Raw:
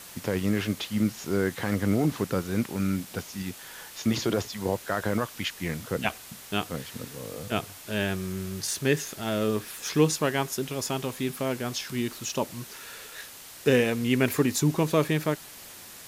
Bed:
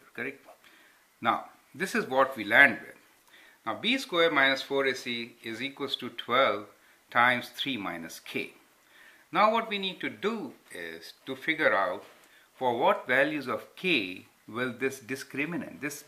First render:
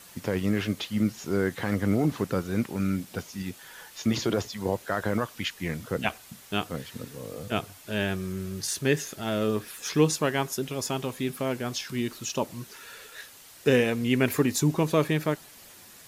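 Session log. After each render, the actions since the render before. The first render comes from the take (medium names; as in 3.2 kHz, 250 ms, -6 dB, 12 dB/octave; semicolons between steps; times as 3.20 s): noise reduction 6 dB, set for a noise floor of -46 dBFS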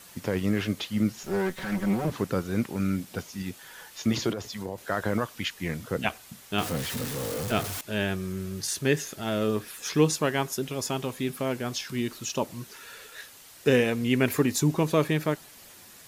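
1.23–2.10 s: comb filter that takes the minimum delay 5.3 ms; 4.31–4.78 s: compression 4:1, threshold -30 dBFS; 6.58–7.81 s: jump at every zero crossing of -29.5 dBFS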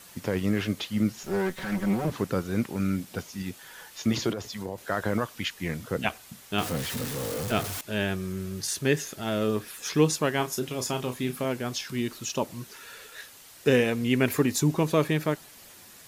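10.37–11.45 s: doubling 32 ms -8.5 dB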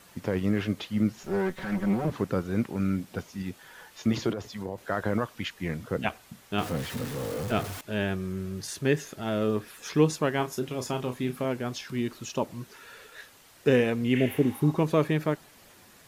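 14.18–14.69 s: spectral replace 760–9200 Hz both; treble shelf 3.1 kHz -8.5 dB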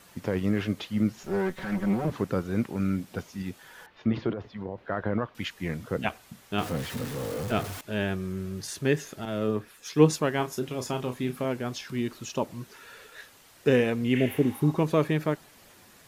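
3.86–5.35 s: distance through air 340 m; 9.25–10.20 s: three bands expanded up and down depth 70%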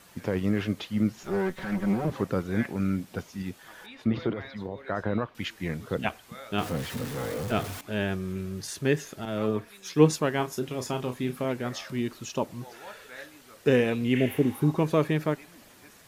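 add bed -21 dB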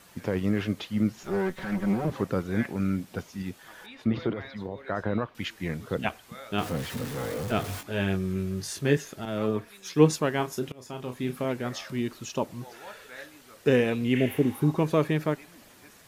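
7.66–8.97 s: doubling 21 ms -5 dB; 10.72–11.29 s: fade in, from -22.5 dB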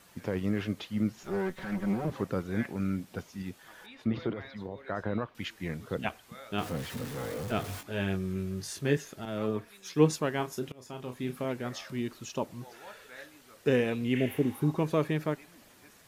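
trim -4 dB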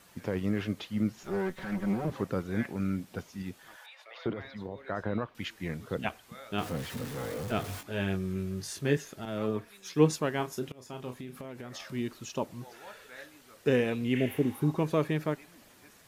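3.76–4.26 s: steep high-pass 560 Hz 48 dB/octave; 11.17–11.80 s: compression, threshold -38 dBFS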